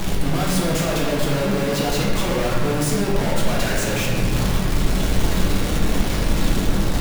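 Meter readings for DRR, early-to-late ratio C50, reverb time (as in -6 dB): -4.5 dB, 0.0 dB, 1.8 s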